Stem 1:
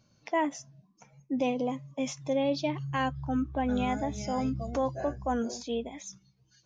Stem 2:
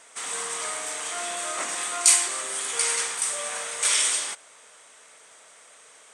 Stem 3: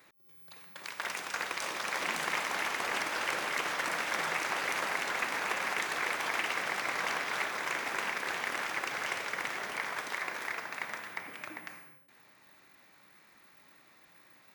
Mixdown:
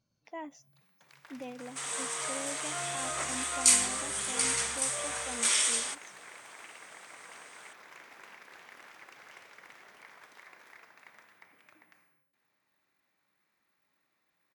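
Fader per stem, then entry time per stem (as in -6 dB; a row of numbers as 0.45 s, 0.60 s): -14.0 dB, -4.5 dB, -17.5 dB; 0.00 s, 1.60 s, 0.25 s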